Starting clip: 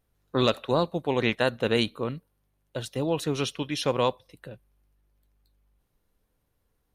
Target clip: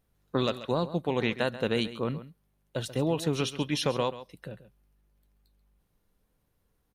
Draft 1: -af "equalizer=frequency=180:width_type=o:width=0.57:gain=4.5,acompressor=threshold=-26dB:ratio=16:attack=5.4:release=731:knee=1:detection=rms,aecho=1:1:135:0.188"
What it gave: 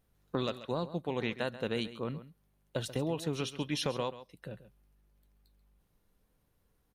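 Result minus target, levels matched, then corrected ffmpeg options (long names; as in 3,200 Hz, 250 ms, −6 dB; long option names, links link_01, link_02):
downward compressor: peak gain reduction +6 dB
-af "equalizer=frequency=180:width_type=o:width=0.57:gain=4.5,acompressor=threshold=-19.5dB:ratio=16:attack=5.4:release=731:knee=1:detection=rms,aecho=1:1:135:0.188"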